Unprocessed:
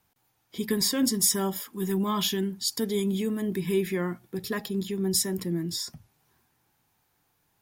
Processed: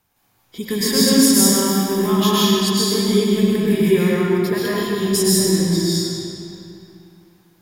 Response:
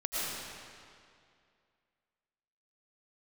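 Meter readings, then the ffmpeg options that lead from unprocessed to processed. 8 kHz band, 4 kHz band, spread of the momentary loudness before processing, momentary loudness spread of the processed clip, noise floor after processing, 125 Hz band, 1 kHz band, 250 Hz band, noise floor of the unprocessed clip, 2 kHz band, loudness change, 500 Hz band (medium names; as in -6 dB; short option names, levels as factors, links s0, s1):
+9.5 dB, +11.0 dB, 10 LU, 11 LU, -62 dBFS, +11.5 dB, +11.5 dB, +12.0 dB, -72 dBFS, +11.0 dB, +11.0 dB, +12.0 dB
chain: -filter_complex "[1:a]atrim=start_sample=2205,asetrate=38367,aresample=44100[s0];[0:a][s0]afir=irnorm=-1:irlink=0,volume=1.5"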